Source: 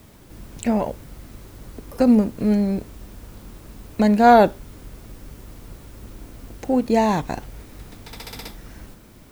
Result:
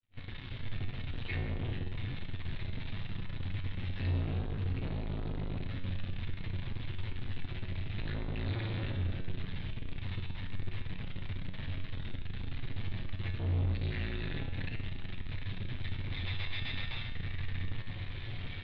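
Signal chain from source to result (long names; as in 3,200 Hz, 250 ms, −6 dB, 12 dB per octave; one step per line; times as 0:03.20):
sub-octave generator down 2 octaves, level +2 dB
mains-hum notches 60/120 Hz
time stretch by overlap-add 2×, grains 35 ms
brick-wall band-stop 170–1,700 Hz
in parallel at −1 dB: downward compressor, threshold −34 dBFS, peak gain reduction 19.5 dB
on the sum: brickwall limiter −19 dBFS, peak gain reduction 11.5 dB
automatic gain control gain up to 6 dB
log-companded quantiser 2 bits
Chebyshev low-pass filter 3,800 Hz, order 5
tuned comb filter 91 Hz, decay 1.2 s, harmonics all, mix 80%
level that may rise only so fast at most 440 dB per second
level +2.5 dB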